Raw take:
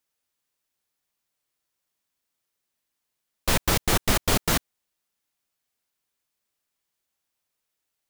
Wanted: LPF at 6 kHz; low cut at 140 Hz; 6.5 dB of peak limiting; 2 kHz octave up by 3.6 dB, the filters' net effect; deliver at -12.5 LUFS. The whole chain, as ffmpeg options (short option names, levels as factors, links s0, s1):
-af "highpass=140,lowpass=6000,equalizer=f=2000:t=o:g=4.5,volume=5.62,alimiter=limit=0.944:level=0:latency=1"